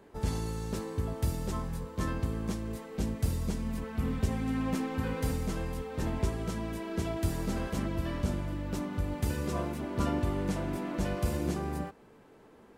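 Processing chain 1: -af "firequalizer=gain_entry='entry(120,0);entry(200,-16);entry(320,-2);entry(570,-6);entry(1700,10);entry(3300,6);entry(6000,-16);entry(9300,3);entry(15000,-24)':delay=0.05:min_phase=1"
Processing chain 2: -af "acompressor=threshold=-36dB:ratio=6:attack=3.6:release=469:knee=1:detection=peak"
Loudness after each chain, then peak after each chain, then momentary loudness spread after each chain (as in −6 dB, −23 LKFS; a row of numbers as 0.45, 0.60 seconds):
−35.0, −42.5 LKFS; −17.0, −28.0 dBFS; 5, 2 LU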